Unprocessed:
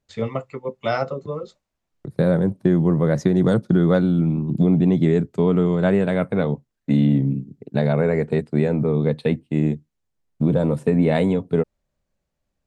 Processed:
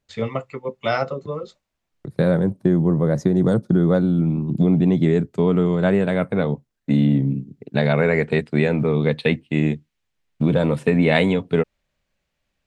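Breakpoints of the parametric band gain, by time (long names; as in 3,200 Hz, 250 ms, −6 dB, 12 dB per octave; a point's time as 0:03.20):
parametric band 2,600 Hz 2 octaves
0:02.25 +4 dB
0:02.83 −5.5 dB
0:04.03 −5.5 dB
0:04.43 +2 dB
0:07.34 +2 dB
0:07.96 +11.5 dB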